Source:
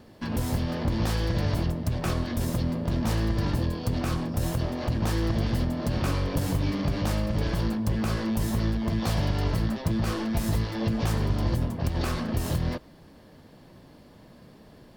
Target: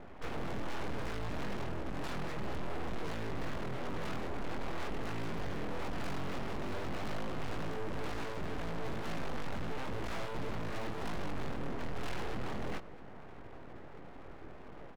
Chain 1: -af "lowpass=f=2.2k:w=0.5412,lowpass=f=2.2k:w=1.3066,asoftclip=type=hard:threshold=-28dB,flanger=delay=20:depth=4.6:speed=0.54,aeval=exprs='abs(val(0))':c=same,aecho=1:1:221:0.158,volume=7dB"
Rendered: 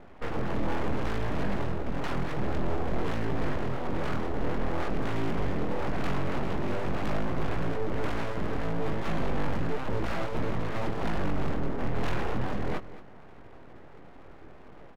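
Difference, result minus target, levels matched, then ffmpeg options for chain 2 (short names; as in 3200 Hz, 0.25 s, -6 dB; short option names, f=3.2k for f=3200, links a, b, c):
echo-to-direct +11 dB; hard clip: distortion -4 dB
-af "lowpass=f=2.2k:w=0.5412,lowpass=f=2.2k:w=1.3066,asoftclip=type=hard:threshold=-38dB,flanger=delay=20:depth=4.6:speed=0.54,aeval=exprs='abs(val(0))':c=same,aecho=1:1:221:0.0447,volume=7dB"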